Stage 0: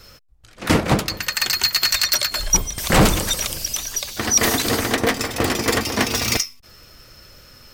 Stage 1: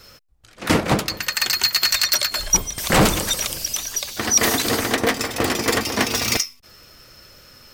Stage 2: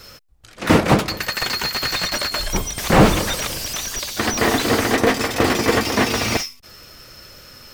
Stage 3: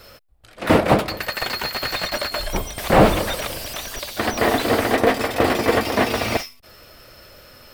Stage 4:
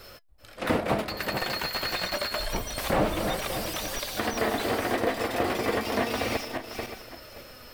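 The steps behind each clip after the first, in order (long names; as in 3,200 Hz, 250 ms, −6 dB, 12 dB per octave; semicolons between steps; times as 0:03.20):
low-shelf EQ 110 Hz −6.5 dB
slew-rate limiting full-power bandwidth 200 Hz; level +4.5 dB
graphic EQ with 15 bands 160 Hz −3 dB, 630 Hz +6 dB, 6,300 Hz −8 dB; level −2 dB
feedback delay that plays each chunk backwards 286 ms, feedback 43%, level −10.5 dB; downward compressor 2 to 1, threshold −27 dBFS, peak gain reduction 10.5 dB; flanger 0.29 Hz, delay 2.5 ms, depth 3.6 ms, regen +79%; level +2.5 dB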